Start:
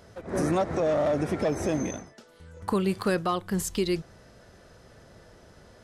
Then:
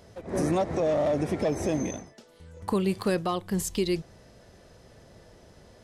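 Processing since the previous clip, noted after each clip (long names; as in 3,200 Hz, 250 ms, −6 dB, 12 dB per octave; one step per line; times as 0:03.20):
parametric band 1,400 Hz −6.5 dB 0.56 octaves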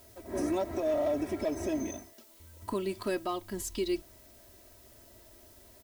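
comb filter 3.1 ms, depth 87%
background noise blue −51 dBFS
level −8 dB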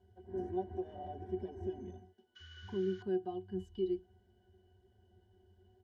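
sound drawn into the spectrogram noise, 0:02.35–0:03.03, 1,100–7,000 Hz −39 dBFS
resonances in every octave F#, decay 0.13 s
level +2 dB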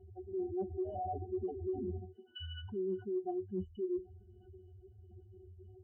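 expanding power law on the bin magnitudes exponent 2.3
reversed playback
downward compressor 6 to 1, threshold −46 dBFS, peak gain reduction 14.5 dB
reversed playback
level +11 dB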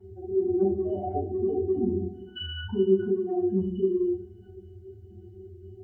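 convolution reverb RT60 0.65 s, pre-delay 3 ms, DRR −12.5 dB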